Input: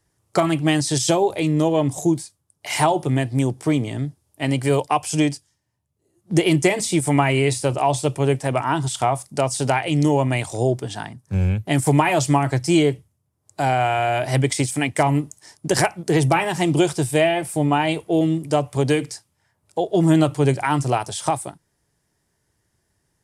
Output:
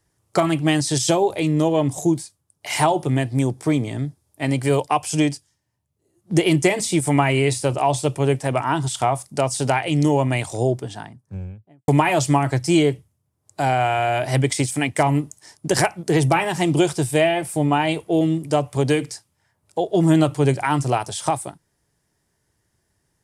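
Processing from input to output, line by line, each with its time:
3.37–4.61 s: band-stop 2.9 kHz
10.51–11.88 s: studio fade out

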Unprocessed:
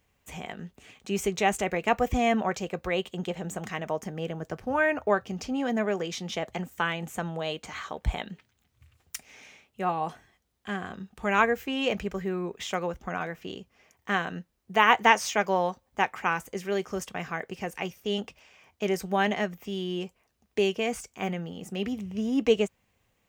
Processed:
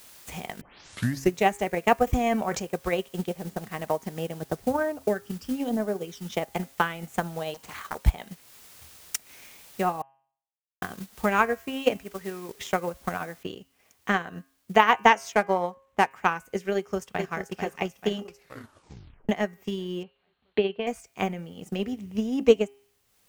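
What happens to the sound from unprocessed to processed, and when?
0.61 s: tape start 0.73 s
2.05–2.65 s: decay stretcher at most 35 dB/s
3.27–3.80 s: tape spacing loss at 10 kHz 24 dB
4.41–6.30 s: phase shifter stages 12, 0.48 Hz -> 1.6 Hz, lowest notch 660–3000 Hz
7.54–7.95 s: loudspeaker Doppler distortion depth 0.81 ms
10.02–10.82 s: mute
11.98–12.49 s: bass shelf 500 Hz -8.5 dB
13.43 s: noise floor step -49 dB -64 dB
15.32–16.11 s: median filter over 9 samples
16.74–17.31 s: echo throw 440 ms, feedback 60%, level -5 dB
18.23 s: tape stop 1.06 s
20.03–20.87 s: rippled Chebyshev low-pass 4.3 kHz, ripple 3 dB
whole clip: de-hum 135.4 Hz, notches 23; dynamic bell 3 kHz, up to -4 dB, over -42 dBFS, Q 0.8; transient shaper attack +9 dB, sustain -6 dB; trim -1.5 dB

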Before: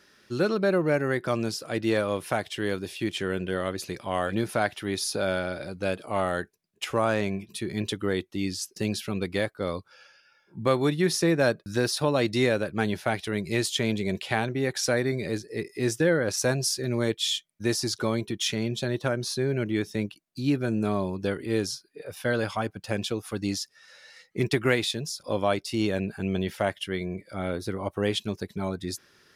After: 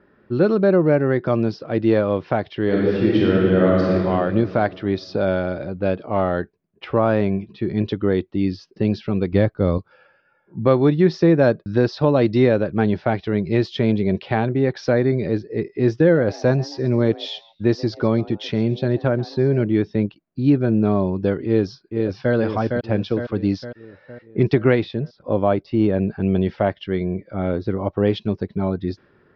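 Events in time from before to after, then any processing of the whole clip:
2.64–3.94 s: reverb throw, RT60 2.4 s, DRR -4.5 dB
9.32–9.78 s: bass shelf 180 Hz +11 dB
16.01–19.65 s: frequency-shifting echo 135 ms, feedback 36%, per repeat +150 Hz, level -20 dB
21.45–22.34 s: echo throw 460 ms, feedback 55%, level -4 dB
24.83–26.07 s: low-pass 2.2 kHz 6 dB/octave
whole clip: level-controlled noise filter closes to 1.7 kHz, open at -21.5 dBFS; steep low-pass 5.3 kHz 48 dB/octave; tilt shelf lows +7.5 dB, about 1.4 kHz; trim +2 dB

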